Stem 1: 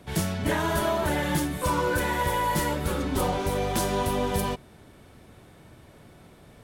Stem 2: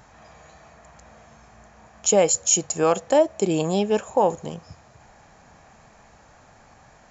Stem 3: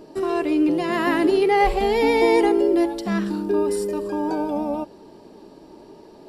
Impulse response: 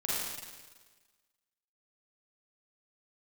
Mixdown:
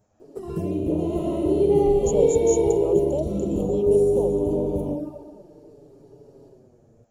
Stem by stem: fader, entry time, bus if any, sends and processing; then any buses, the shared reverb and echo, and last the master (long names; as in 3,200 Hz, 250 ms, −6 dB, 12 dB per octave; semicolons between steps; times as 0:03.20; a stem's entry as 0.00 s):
−11.5 dB, 0.40 s, send −14 dB, tilt shelving filter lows +8.5 dB, about 1,400 Hz
−10.0 dB, 0.00 s, no send, no processing
−2.5 dB, 0.20 s, send −9.5 dB, automatic ducking −11 dB, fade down 0.65 s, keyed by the second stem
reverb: on, RT60 1.4 s, pre-delay 37 ms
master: graphic EQ with 10 bands 500 Hz +7 dB, 1,000 Hz −9 dB, 2,000 Hz −12 dB, 4,000 Hz −8 dB; flanger swept by the level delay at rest 10.1 ms, full sweep at −21.5 dBFS